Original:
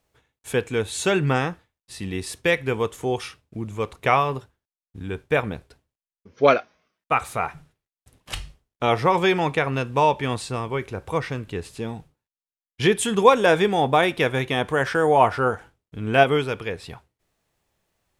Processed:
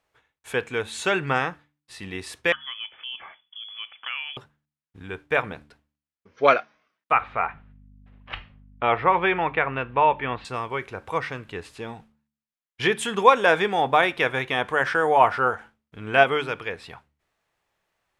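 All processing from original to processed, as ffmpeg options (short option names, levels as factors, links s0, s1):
-filter_complex "[0:a]asettb=1/sr,asplit=3[s0][s1][s2];[s0]atrim=end=2.524[s3];[s1]atrim=start=2.52:end=4.37,asetpts=PTS-STARTPTS,afade=t=in:d=0.004:c=qsin,afade=t=out:st=1.846:d=0.004:c=qsin,acompressor=threshold=0.01:ratio=2:attack=3.2:release=140:knee=1:detection=peak,lowpass=f=3000:t=q:w=0.5098,lowpass=f=3000:t=q:w=0.6013,lowpass=f=3000:t=q:w=0.9,lowpass=f=3000:t=q:w=2.563,afreqshift=-3500[s4];[s2]atrim=start=4.366[s5];[s3][s4]acrossfade=d=0.004:c1=hsin:c2=qsin[s6];[s6][s5]acrossfade=d=0.004:c1=qsin:c2=hsin,asettb=1/sr,asplit=3[s7][s8][s9];[s7]atrim=end=7.124[s10];[s8]atrim=start=7.12:end=10.45,asetpts=PTS-STARTPTS,afade=t=in:d=0.004:c=qsin,afade=t=out:st=3.326:d=0.004:c=qsin,lowpass=f=3000:w=0.5412,lowpass=f=3000:w=1.3066,aeval=exprs='val(0)+0.00891*(sin(2*PI*50*n/s)+sin(2*PI*2*50*n/s)/2+sin(2*PI*3*50*n/s)/3+sin(2*PI*4*50*n/s)/4+sin(2*PI*5*50*n/s)/5)':c=same[s11];[s9]atrim=start=10.446[s12];[s10][s11]acrossfade=d=0.004:c1=hsin:c2=qsin[s13];[s13][s12]acrossfade=d=0.004:c1=qsin:c2=hsin,equalizer=f=1500:w=0.37:g=11.5,bandreject=f=73.54:t=h:w=4,bandreject=f=147.08:t=h:w=4,bandreject=f=220.62:t=h:w=4,bandreject=f=294.16:t=h:w=4,volume=0.355"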